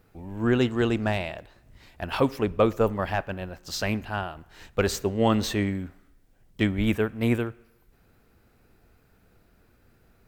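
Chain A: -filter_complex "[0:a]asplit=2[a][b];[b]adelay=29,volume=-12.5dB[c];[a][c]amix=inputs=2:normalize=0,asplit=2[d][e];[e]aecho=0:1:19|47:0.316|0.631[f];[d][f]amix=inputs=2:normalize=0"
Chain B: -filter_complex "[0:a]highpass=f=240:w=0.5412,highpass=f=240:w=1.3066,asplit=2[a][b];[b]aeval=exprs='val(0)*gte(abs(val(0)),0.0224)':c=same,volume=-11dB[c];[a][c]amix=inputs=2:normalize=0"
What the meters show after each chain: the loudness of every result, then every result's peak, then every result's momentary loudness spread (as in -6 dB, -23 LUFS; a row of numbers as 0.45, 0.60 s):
-24.5, -26.0 LUFS; -7.0, -7.0 dBFS; 13, 14 LU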